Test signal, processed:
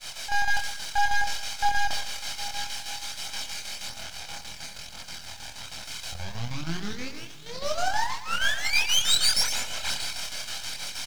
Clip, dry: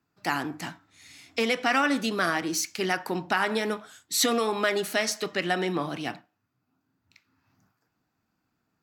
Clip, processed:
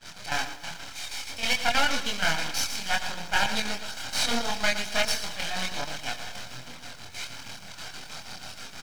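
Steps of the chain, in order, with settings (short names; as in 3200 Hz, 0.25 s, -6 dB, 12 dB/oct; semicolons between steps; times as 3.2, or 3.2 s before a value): delta modulation 32 kbps, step -28 dBFS; low shelf 73 Hz -12 dB; comb 1.3 ms, depth 100%; on a send: diffused feedback echo 0.794 s, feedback 69%, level -14.5 dB; on the sum: half-wave rectifier; high shelf 2300 Hz +10 dB; expander -24 dBFS; echo 0.771 s -20.5 dB; chopper 6.3 Hz, depth 65%, duty 65%; chorus voices 2, 0.6 Hz, delay 25 ms, depth 1.3 ms; lo-fi delay 0.116 s, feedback 35%, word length 8-bit, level -11 dB; gain +1.5 dB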